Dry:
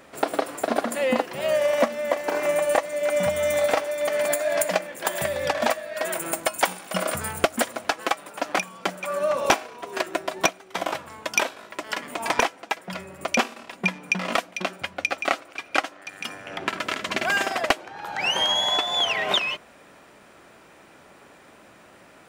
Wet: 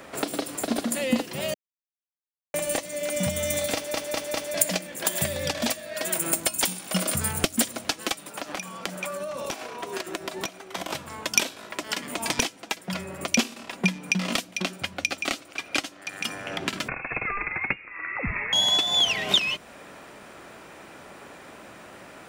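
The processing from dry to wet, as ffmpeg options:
-filter_complex "[0:a]asplit=3[a][b][c];[a]afade=t=out:st=8.21:d=0.02[d];[b]acompressor=threshold=-28dB:ratio=6:attack=3.2:release=140:knee=1:detection=peak,afade=t=in:st=8.21:d=0.02,afade=t=out:st=10.89:d=0.02[e];[c]afade=t=in:st=10.89:d=0.02[f];[d][e][f]amix=inputs=3:normalize=0,asettb=1/sr,asplit=3[g][h][i];[g]atrim=end=16.884[j];[h]atrim=start=16.88:end=18.53,asetpts=PTS-STARTPTS,afade=t=in:d=0.004:c=qsin,afade=t=out:st=1.646:d=0.004:c=qsin,lowpass=f=2.4k:t=q:w=0.5098,lowpass=f=2.4k:t=q:w=0.6013,lowpass=f=2.4k:t=q:w=0.9,lowpass=f=2.4k:t=q:w=2.563,afreqshift=-2800[k];[i]atrim=start=18.526[l];[j][k]acrossfade=d=0.004:c1=hsin:c2=qsin[m];[m][l]acrossfade=d=0.004:c1=qsin:c2=hsin,asplit=7[n][o][p][q][r][s][t];[n]atrim=end=1.54,asetpts=PTS-STARTPTS,afade=t=out:st=1.536:d=0.004:c=hsin[u];[o]atrim=start=1.54:end=2.54,asetpts=PTS-STARTPTS,volume=0[v];[p]atrim=start=2.54:end=3.942,asetpts=PTS-STARTPTS,afade=t=in:d=0.004:c=hsin[w];[q]atrim=start=3.738:end=3.942[x];[r]atrim=start=3.738:end=3.942[y];[s]atrim=start=3.738:end=3.942[z];[t]atrim=start=4.538[aa];[u][v][w]concat=n=3:v=0:a=1[ab];[ab][x]acrossfade=d=0.004:c1=hsin:c2=hsin[ac];[ac][y]acrossfade=d=0.004:c1=hsin:c2=hsin[ad];[ad][z]acrossfade=d=0.004:c1=hsin:c2=hsin[ae];[ae][aa]acrossfade=d=0.004:c1=hsin:c2=hsin,acrossover=split=300|3000[af][ag][ah];[ag]acompressor=threshold=-38dB:ratio=6[ai];[af][ai][ah]amix=inputs=3:normalize=0,volume=5.5dB"

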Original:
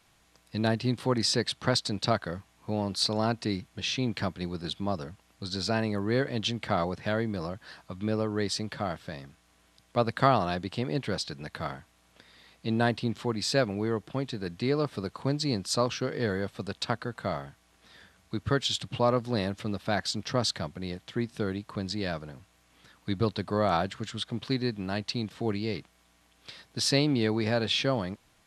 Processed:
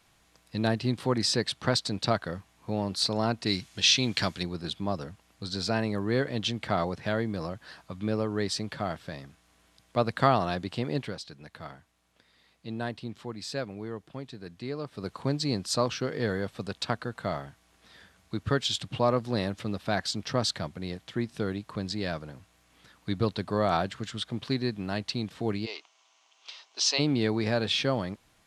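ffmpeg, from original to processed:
-filter_complex "[0:a]asettb=1/sr,asplit=3[a][b][c];[a]atrim=end=3.464[d];[b]atrim=start=3.46:end=4.43,asetpts=PTS-STARTPTS,afade=t=in:d=0.004:c=qsin,afade=t=out:st=0.966:d=0.004:c=qsin,equalizer=f=5.7k:w=0.37:g=12[e];[c]atrim=start=4.426[f];[d][e]acrossfade=d=0.004:c1=hsin:c2=qsin[g];[g][f]acrossfade=d=0.004:c1=qsin:c2=hsin,asplit=3[h][i][j];[h]afade=t=out:st=25.65:d=0.02[k];[i]highpass=f=480:w=0.5412,highpass=f=480:w=1.3066,equalizer=f=510:t=q:w=4:g=-9,equalizer=f=1k:t=q:w=4:g=4,equalizer=f=1.7k:t=q:w=4:g=-8,equalizer=f=2.9k:t=q:w=4:g=6,equalizer=f=6.2k:t=q:w=4:g=8,lowpass=f=6.9k:w=0.5412,lowpass=f=6.9k:w=1.3066,afade=t=in:st=25.65:d=0.02,afade=t=out:st=26.98:d=0.02[l];[j]afade=t=in:st=26.98:d=0.02[m];[k][l][m]amix=inputs=3:normalize=0,asplit=3[n][o][p];[n]atrim=end=11.14,asetpts=PTS-STARTPTS,afade=t=out:st=11.01:d=0.13:silence=0.398107[q];[o]atrim=start=11.14:end=14.95,asetpts=PTS-STARTPTS,volume=-8dB[r];[p]atrim=start=14.95,asetpts=PTS-STARTPTS,afade=t=in:d=0.13:silence=0.398107[s];[q][r][s]concat=n=3:v=0:a=1"

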